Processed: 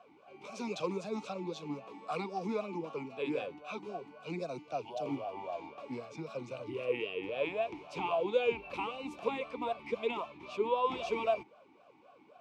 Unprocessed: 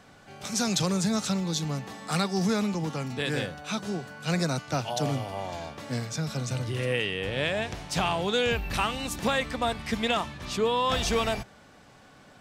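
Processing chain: 4.08–5.06 s: dynamic bell 1.2 kHz, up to -8 dB, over -45 dBFS, Q 0.76; talking filter a-u 3.8 Hz; trim +4.5 dB

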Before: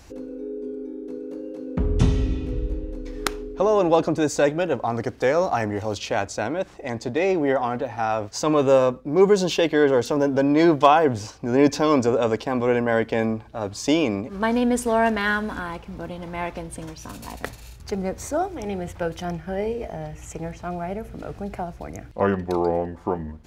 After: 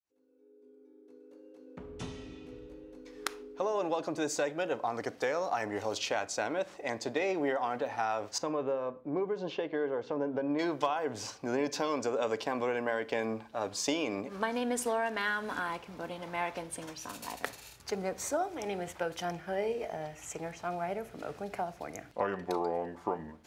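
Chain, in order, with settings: fade-in on the opening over 6.32 s; high-pass 550 Hz 6 dB/octave; compression 16:1, threshold -25 dBFS, peak gain reduction 14.5 dB; 8.38–10.59 s: tape spacing loss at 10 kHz 37 dB; reverberation RT60 0.55 s, pre-delay 7 ms, DRR 16 dB; trim -2 dB

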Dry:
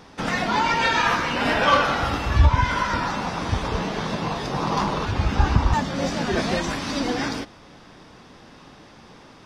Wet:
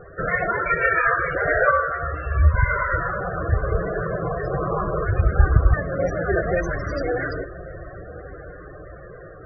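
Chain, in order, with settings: rattle on loud lows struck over -26 dBFS, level -24 dBFS; in parallel at +1.5 dB: compression 6:1, threshold -32 dBFS, peak gain reduction 20 dB; on the sum: Chebyshev low-pass 7.9 kHz, order 5; static phaser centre 900 Hz, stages 6; 1.71–2.55 s: feedback comb 77 Hz, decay 0.21 s, harmonics all, mix 90%; on a send: echo that smears into a reverb 1149 ms, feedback 47%, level -16 dB; on the sum: loudest bins only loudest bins 32; trim +3.5 dB

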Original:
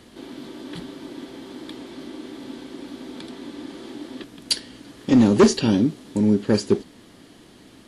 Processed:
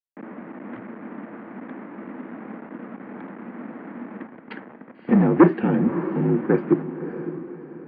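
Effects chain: send-on-delta sampling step -34.5 dBFS; mistuned SSB -54 Hz 270–2100 Hz; echo that smears into a reverb 597 ms, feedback 41%, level -10.5 dB; trim +2.5 dB

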